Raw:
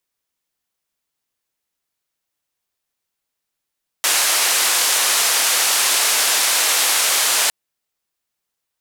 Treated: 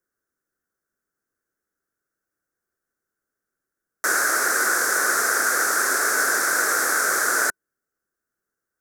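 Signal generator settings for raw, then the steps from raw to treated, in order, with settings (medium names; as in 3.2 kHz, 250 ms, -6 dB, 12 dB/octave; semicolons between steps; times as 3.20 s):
noise band 600–11000 Hz, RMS -17 dBFS 3.46 s
FFT filter 150 Hz 0 dB, 390 Hz +7 dB, 950 Hz -9 dB, 1.5 kHz +10 dB, 2.9 kHz -29 dB, 5.8 kHz -7 dB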